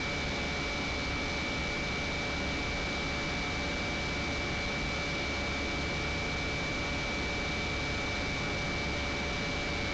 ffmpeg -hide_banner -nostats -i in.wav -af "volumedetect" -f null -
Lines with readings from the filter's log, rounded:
mean_volume: -33.2 dB
max_volume: -28.4 dB